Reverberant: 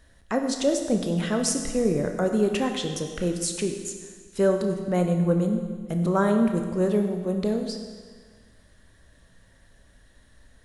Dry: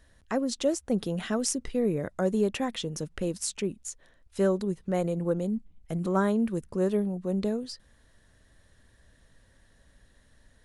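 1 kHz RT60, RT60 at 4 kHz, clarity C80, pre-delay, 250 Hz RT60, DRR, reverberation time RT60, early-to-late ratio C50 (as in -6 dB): 1.6 s, 1.5 s, 7.5 dB, 17 ms, 1.6 s, 4.5 dB, 1.6 s, 6.0 dB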